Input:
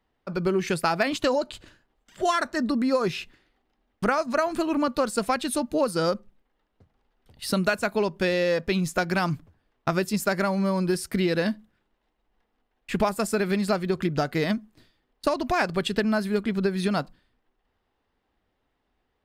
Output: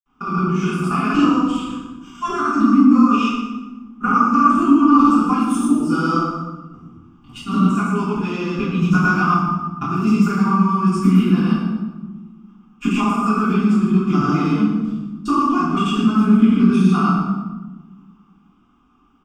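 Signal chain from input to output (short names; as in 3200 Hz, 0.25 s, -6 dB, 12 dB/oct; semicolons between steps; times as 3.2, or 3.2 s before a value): tone controls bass -8 dB, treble -1 dB; compressor 3:1, threshold -36 dBFS, peak gain reduction 13 dB; fixed phaser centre 2800 Hz, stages 8; small resonant body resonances 230/1200 Hz, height 16 dB, ringing for 35 ms; grains, grains 20/s, pitch spread up and down by 0 st; feedback echo 0.118 s, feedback 34%, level -10 dB; reverb RT60 1.1 s, pre-delay 4 ms, DRR -11.5 dB; gain +1 dB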